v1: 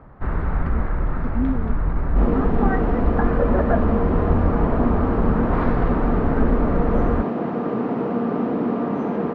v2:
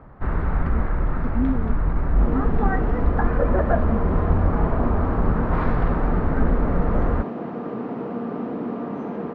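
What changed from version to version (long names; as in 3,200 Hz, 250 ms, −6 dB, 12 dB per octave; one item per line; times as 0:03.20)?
second sound −6.0 dB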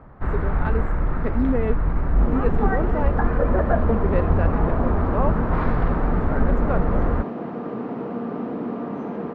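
speech: remove flat-topped band-pass 190 Hz, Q 1.1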